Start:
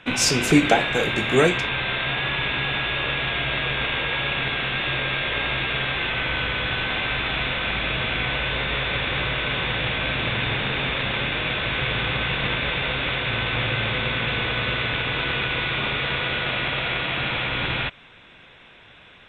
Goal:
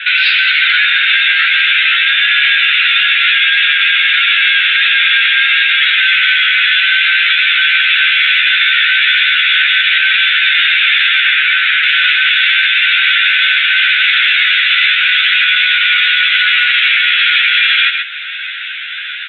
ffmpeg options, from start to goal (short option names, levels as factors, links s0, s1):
-filter_complex "[0:a]asettb=1/sr,asplit=3[s0][s1][s2];[s0]atrim=end=11.204[s3];[s1]atrim=start=11.2:end=11.83,asetpts=PTS-STARTPTS,afade=t=in:d=0.004:c=qsin,afade=t=out:st=0.626:d=0.004:c=qsin,highshelf=f=2600:g=-10.5[s4];[s2]atrim=start=11.826[s5];[s3][s4]acrossfade=d=0.004:c1=hsin:c2=qsin[s6];[s6][s5]acrossfade=d=0.004:c1=qsin:c2=hsin,asplit=2[s7][s8];[s8]acompressor=threshold=0.01:ratio=4,volume=1.26[s9];[s7][s9]amix=inputs=2:normalize=0,aeval=exprs='0.794*sin(PI/2*1.78*val(0)/0.794)':c=same,flanger=delay=6.6:depth=8.7:regen=38:speed=0.17:shape=triangular,asoftclip=type=tanh:threshold=0.422,asuperpass=centerf=2400:order=20:qfactor=0.88,asplit=2[s10][s11];[s11]adelay=13,volume=0.631[s12];[s10][s12]amix=inputs=2:normalize=0,asplit=2[s13][s14];[s14]aecho=0:1:130:0.282[s15];[s13][s15]amix=inputs=2:normalize=0,alimiter=level_in=5.31:limit=0.891:release=50:level=0:latency=1,volume=0.891"